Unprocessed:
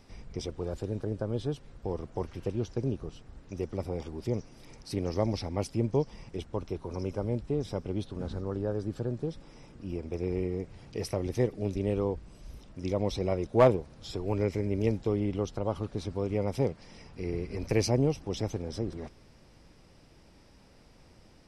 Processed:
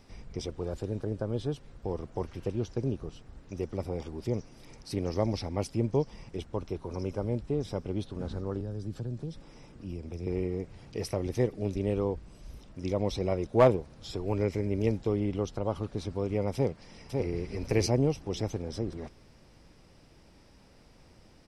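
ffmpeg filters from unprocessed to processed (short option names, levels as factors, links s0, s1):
-filter_complex "[0:a]asettb=1/sr,asplit=3[s0][s1][s2];[s0]atrim=end=8.604[s3];[s1]atrim=start=8.6:end=10.27,asetpts=PTS-STARTPTS,afade=t=in:d=0.004:c=qsin,afade=t=out:st=1.666:d=0.004:c=qsin,acrossover=split=230|3000[s4][s5][s6];[s5]acompressor=threshold=0.00708:ratio=6:attack=3.2:release=140:knee=2.83:detection=peak[s7];[s4][s7][s6]amix=inputs=3:normalize=0[s8];[s2]atrim=start=10.266[s9];[s3][s8]acrossfade=d=0.004:c1=hsin:c2=qsin[s10];[s10][s9]acrossfade=d=0.004:c1=qsin:c2=hsin,asplit=2[s11][s12];[s12]afade=t=in:st=16.54:d=0.01,afade=t=out:st=17.31:d=0.01,aecho=0:1:550|1100|1650:0.668344|0.133669|0.0267338[s13];[s11][s13]amix=inputs=2:normalize=0"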